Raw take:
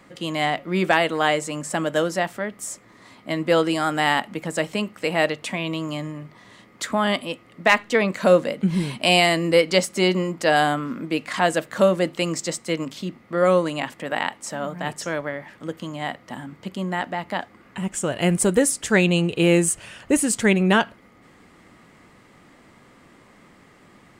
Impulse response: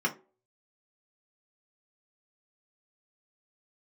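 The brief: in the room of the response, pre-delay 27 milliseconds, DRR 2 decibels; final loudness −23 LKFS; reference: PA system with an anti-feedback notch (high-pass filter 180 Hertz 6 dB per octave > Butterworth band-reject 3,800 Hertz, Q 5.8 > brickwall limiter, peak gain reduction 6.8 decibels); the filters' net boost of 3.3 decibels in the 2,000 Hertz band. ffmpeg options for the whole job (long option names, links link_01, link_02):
-filter_complex "[0:a]equalizer=frequency=2000:width_type=o:gain=4,asplit=2[link_01][link_02];[1:a]atrim=start_sample=2205,adelay=27[link_03];[link_02][link_03]afir=irnorm=-1:irlink=0,volume=-11dB[link_04];[link_01][link_04]amix=inputs=2:normalize=0,highpass=frequency=180:poles=1,asuperstop=centerf=3800:order=8:qfactor=5.8,volume=-2.5dB,alimiter=limit=-8.5dB:level=0:latency=1"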